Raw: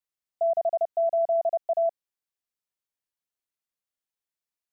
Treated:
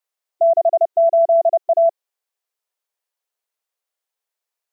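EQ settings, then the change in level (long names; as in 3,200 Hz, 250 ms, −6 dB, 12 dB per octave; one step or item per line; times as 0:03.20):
linear-phase brick-wall high-pass 370 Hz
parametric band 700 Hz +4 dB 1.7 octaves
+6.0 dB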